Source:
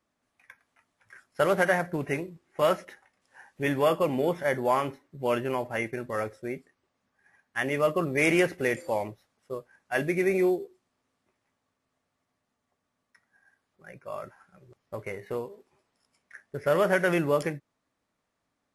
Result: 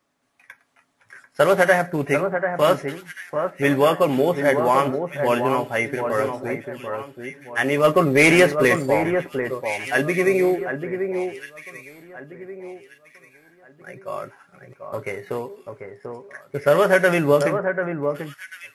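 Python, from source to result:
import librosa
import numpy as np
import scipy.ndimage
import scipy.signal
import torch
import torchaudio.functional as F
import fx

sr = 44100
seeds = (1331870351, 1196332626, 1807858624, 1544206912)

y = fx.low_shelf(x, sr, hz=91.0, db=-9.0)
y = y + 0.35 * np.pad(y, (int(7.2 * sr / 1000.0), 0))[:len(y)]
y = fx.leveller(y, sr, passes=1, at=(7.84, 8.86))
y = fx.echo_alternate(y, sr, ms=741, hz=1800.0, feedback_pct=52, wet_db=-6.5)
y = y * 10.0 ** (7.0 / 20.0)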